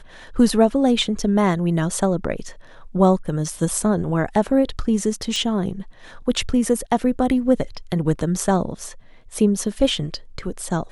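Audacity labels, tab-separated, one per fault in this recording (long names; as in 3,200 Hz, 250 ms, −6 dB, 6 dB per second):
5.360000	5.360000	click −13 dBFS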